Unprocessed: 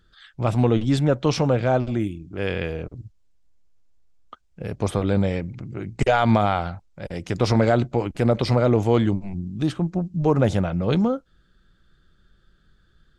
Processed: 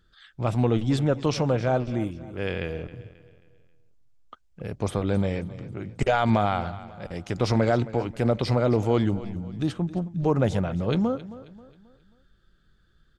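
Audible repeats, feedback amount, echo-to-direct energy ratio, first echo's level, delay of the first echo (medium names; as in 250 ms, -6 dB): 3, 41%, -15.5 dB, -16.5 dB, 268 ms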